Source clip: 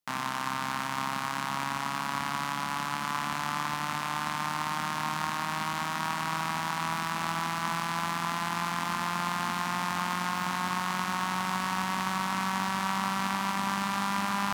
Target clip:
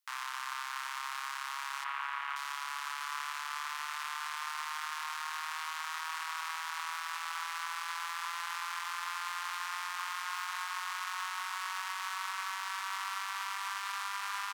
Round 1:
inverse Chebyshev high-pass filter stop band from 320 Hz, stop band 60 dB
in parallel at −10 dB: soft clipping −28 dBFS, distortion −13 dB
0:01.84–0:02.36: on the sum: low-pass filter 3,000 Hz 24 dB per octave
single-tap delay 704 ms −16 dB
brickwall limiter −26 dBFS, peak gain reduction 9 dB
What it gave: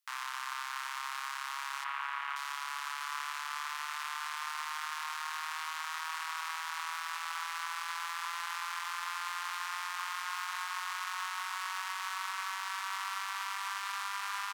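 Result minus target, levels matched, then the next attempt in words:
soft clipping: distortion −7 dB
inverse Chebyshev high-pass filter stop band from 320 Hz, stop band 60 dB
in parallel at −10 dB: soft clipping −36 dBFS, distortion −6 dB
0:01.84–0:02.36: on the sum: low-pass filter 3,000 Hz 24 dB per octave
single-tap delay 704 ms −16 dB
brickwall limiter −26 dBFS, peak gain reduction 8.5 dB

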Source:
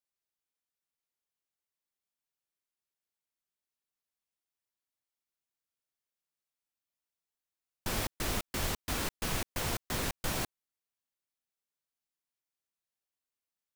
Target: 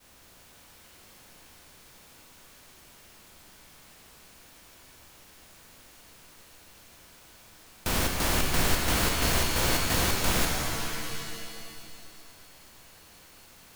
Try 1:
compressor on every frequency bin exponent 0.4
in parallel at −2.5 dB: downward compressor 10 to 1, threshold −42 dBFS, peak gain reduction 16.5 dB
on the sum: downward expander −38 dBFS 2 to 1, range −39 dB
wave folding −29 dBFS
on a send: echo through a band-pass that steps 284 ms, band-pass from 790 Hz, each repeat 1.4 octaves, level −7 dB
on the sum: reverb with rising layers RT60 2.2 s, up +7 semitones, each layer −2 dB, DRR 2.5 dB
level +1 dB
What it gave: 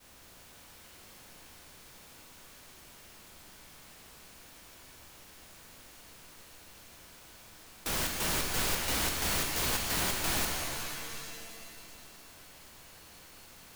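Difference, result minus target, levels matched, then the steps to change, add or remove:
wave folding: distortion +20 dB
change: wave folding −21 dBFS

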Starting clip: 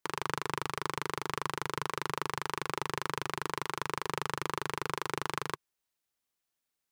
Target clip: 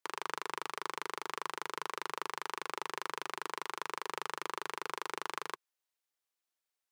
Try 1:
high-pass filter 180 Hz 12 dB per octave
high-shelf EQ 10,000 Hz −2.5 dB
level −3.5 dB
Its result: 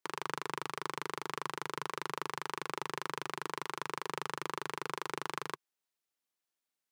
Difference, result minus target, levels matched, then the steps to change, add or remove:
250 Hz band +4.5 dB
change: high-pass filter 400 Hz 12 dB per octave

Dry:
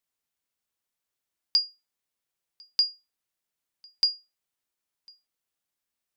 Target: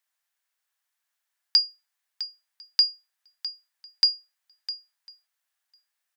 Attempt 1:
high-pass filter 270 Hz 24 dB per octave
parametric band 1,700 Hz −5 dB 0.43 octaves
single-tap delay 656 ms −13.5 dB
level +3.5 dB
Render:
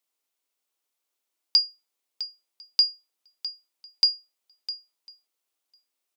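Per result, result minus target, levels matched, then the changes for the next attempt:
500 Hz band +6.5 dB; 2,000 Hz band −5.0 dB
change: high-pass filter 660 Hz 24 dB per octave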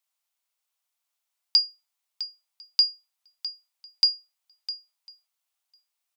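2,000 Hz band −5.0 dB
change: parametric band 1,700 Hz +7 dB 0.43 octaves

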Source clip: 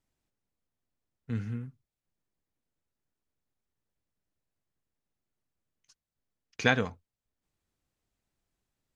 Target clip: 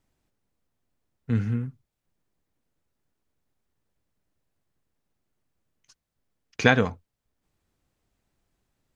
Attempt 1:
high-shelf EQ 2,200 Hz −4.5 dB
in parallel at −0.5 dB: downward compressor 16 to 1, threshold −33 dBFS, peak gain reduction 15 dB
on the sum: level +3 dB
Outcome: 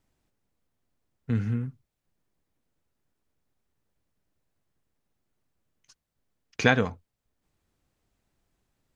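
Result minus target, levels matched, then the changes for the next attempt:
downward compressor: peak gain reduction +9 dB
change: downward compressor 16 to 1, threshold −23.5 dBFS, peak gain reduction 6 dB

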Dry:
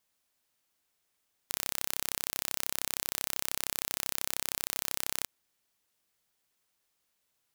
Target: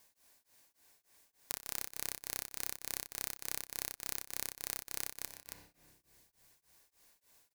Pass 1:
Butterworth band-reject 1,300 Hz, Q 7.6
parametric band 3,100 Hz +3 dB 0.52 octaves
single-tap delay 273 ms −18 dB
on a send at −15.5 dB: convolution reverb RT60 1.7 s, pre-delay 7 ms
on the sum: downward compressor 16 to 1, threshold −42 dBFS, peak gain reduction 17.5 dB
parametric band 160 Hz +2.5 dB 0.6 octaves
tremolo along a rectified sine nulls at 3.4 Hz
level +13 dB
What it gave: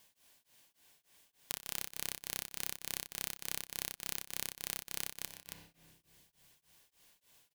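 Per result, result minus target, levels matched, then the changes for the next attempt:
125 Hz band +3.0 dB; 4,000 Hz band +3.0 dB
change: second parametric band 160 Hz −5 dB 0.6 octaves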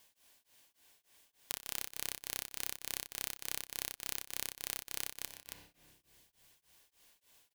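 4,000 Hz band +3.0 dB
change: first parametric band 3,100 Hz −5.5 dB 0.52 octaves

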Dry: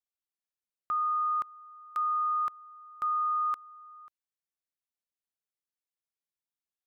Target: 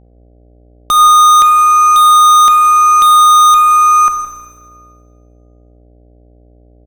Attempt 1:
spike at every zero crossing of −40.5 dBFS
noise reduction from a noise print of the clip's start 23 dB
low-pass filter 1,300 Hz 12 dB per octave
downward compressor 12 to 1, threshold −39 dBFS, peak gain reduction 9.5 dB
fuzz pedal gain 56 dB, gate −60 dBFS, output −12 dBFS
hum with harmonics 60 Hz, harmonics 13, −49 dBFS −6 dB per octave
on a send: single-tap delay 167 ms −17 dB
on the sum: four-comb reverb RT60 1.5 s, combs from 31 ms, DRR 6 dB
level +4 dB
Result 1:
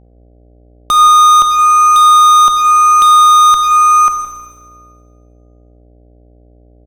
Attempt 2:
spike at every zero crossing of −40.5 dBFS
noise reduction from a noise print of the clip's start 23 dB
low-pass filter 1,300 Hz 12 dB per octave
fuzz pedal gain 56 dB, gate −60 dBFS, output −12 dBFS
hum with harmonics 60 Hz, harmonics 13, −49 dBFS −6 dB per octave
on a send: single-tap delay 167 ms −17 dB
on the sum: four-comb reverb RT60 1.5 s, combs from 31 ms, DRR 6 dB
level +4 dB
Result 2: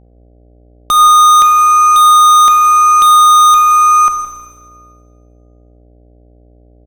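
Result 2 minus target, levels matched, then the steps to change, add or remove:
spike at every zero crossing: distortion +11 dB
change: spike at every zero crossing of −51.5 dBFS

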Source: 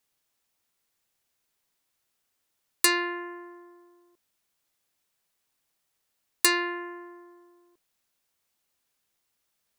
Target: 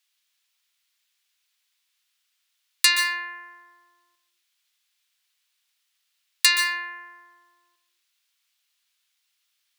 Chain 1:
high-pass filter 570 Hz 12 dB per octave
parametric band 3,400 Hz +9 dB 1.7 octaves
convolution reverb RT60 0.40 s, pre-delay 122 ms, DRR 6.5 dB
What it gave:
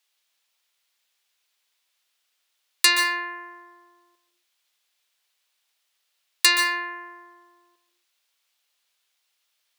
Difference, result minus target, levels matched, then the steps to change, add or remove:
500 Hz band +11.5 dB
change: high-pass filter 1,300 Hz 12 dB per octave

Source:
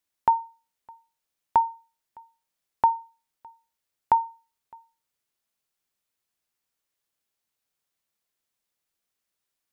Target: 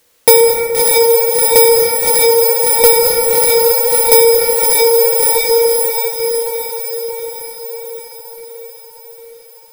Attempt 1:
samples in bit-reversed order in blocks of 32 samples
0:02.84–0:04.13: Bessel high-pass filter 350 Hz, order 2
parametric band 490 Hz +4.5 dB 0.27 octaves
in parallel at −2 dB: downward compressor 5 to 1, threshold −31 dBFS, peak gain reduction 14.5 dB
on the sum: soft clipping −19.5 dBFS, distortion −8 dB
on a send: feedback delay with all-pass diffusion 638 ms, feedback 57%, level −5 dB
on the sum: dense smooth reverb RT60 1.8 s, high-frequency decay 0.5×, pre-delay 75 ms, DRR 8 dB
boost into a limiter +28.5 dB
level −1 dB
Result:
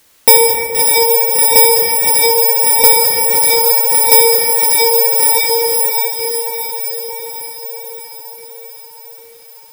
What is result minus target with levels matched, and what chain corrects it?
downward compressor: peak gain reduction +14.5 dB; 500 Hz band −6.5 dB
samples in bit-reversed order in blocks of 32 samples
0:02.84–0:04.13: Bessel high-pass filter 350 Hz, order 2
parametric band 490 Hz +16 dB 0.27 octaves
soft clipping −19.5 dBFS, distortion −6 dB
on a send: feedback delay with all-pass diffusion 638 ms, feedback 57%, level −5 dB
on the sum: dense smooth reverb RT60 1.8 s, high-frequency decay 0.5×, pre-delay 75 ms, DRR 8 dB
boost into a limiter +28.5 dB
level −1 dB

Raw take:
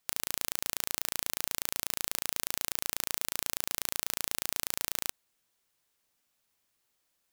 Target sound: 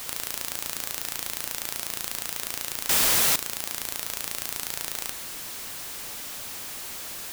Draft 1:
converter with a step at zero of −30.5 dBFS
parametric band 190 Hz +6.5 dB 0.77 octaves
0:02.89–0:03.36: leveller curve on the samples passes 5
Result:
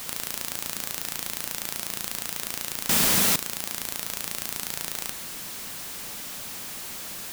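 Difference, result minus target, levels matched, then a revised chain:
250 Hz band +7.0 dB
converter with a step at zero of −30.5 dBFS
0:02.89–0:03.36: leveller curve on the samples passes 5

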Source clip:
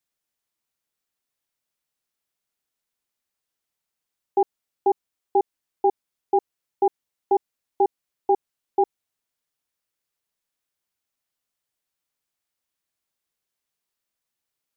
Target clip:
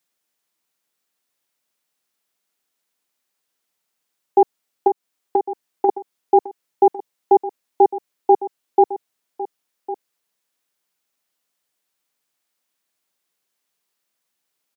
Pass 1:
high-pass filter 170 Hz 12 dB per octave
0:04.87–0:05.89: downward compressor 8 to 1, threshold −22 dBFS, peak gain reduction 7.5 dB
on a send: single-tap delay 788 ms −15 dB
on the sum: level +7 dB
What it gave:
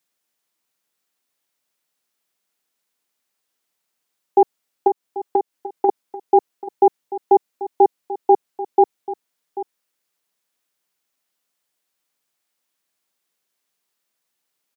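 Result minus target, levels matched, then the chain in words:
echo 316 ms early
high-pass filter 170 Hz 12 dB per octave
0:04.87–0:05.89: downward compressor 8 to 1, threshold −22 dBFS, peak gain reduction 7.5 dB
on a send: single-tap delay 1,104 ms −15 dB
on the sum: level +7 dB

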